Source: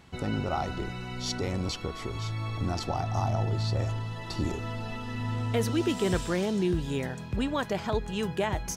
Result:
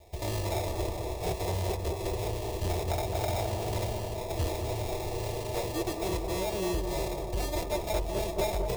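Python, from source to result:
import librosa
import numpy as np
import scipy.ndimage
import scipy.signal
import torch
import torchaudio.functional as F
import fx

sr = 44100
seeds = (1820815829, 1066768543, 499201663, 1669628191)

y = fx.lower_of_two(x, sr, delay_ms=3.4)
y = fx.peak_eq(y, sr, hz=5700.0, db=5.5, octaves=0.77)
y = fx.rider(y, sr, range_db=3, speed_s=0.5)
y = fx.sample_hold(y, sr, seeds[0], rate_hz=1500.0, jitter_pct=0)
y = fx.fixed_phaser(y, sr, hz=570.0, stages=4)
y = fx.notch_comb(y, sr, f0_hz=270.0)
y = 10.0 ** (-29.5 / 20.0) * np.tanh(y / 10.0 ** (-29.5 / 20.0))
y = fx.echo_bbd(y, sr, ms=214, stages=2048, feedback_pct=70, wet_db=-6.0)
y = y * librosa.db_to_amplitude(5.5)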